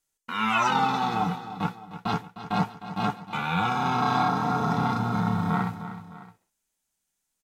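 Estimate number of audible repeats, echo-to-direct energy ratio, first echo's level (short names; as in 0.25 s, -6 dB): 2, -11.5 dB, -12.5 dB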